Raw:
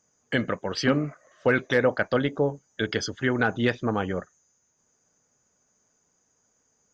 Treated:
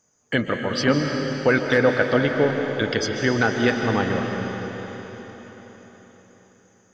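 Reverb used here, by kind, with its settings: digital reverb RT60 4.6 s, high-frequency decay 1×, pre-delay 0.1 s, DRR 2.5 dB; gain +3 dB

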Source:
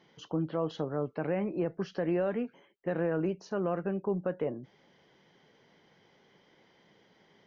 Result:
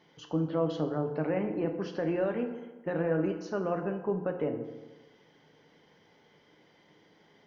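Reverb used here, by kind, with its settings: FDN reverb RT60 1.2 s, low-frequency decay 1×, high-frequency decay 0.6×, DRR 4.5 dB

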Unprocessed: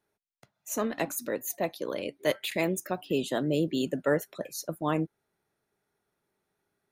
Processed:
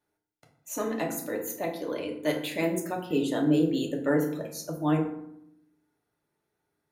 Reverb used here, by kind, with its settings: FDN reverb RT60 0.75 s, low-frequency decay 1.55×, high-frequency decay 0.55×, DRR 0 dB; gain -3.5 dB

